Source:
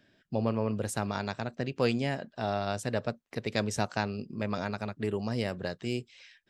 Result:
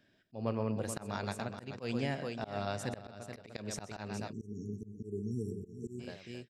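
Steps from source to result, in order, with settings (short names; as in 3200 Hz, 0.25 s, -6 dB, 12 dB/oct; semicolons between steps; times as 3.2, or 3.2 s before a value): tapped delay 0.128/0.429/0.698 s -12/-9/-18 dB; auto swell 0.165 s; spectral delete 4.32–6, 460–5500 Hz; gain -4.5 dB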